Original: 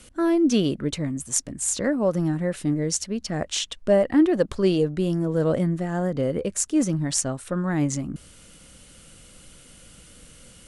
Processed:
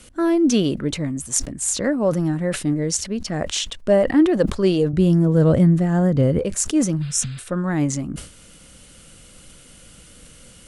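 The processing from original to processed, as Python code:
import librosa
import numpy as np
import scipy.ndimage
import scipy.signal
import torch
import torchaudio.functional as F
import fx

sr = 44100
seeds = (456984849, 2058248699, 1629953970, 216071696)

y = fx.peak_eq(x, sr, hz=82.0, db=14.5, octaves=2.1, at=(4.93, 6.39))
y = fx.spec_repair(y, sr, seeds[0], start_s=7.04, length_s=0.37, low_hz=240.0, high_hz=5100.0, source='after')
y = fx.sustainer(y, sr, db_per_s=110.0)
y = y * 10.0 ** (2.5 / 20.0)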